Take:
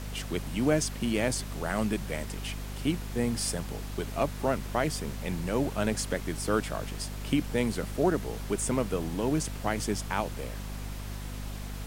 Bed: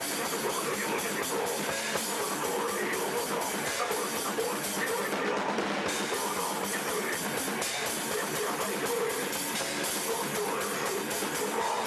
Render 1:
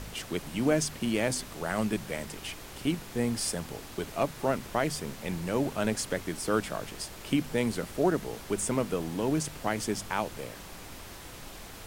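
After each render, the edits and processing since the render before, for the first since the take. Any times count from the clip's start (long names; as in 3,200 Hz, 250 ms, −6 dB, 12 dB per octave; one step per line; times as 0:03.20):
hum removal 50 Hz, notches 5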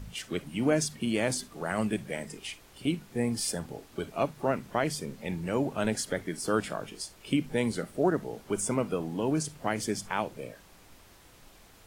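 noise reduction from a noise print 11 dB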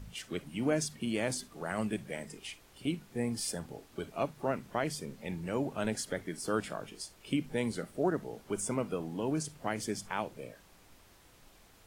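level −4.5 dB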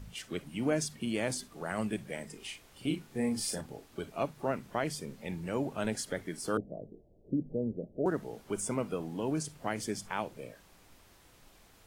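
0:02.36–0:03.61: double-tracking delay 38 ms −5 dB
0:06.57–0:08.06: Butterworth low-pass 650 Hz 48 dB per octave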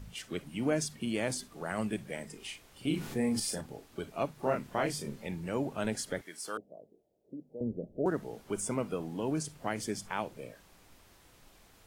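0:02.87–0:03.40: envelope flattener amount 50%
0:04.40–0:05.27: double-tracking delay 28 ms −2.5 dB
0:06.21–0:07.61: high-pass filter 1,200 Hz 6 dB per octave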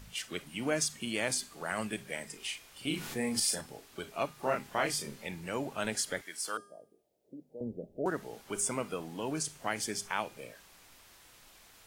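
tilt shelving filter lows −5.5 dB, about 730 Hz
hum removal 405.1 Hz, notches 36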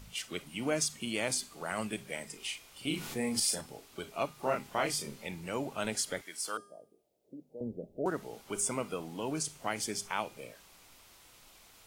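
parametric band 1,700 Hz −6 dB 0.25 octaves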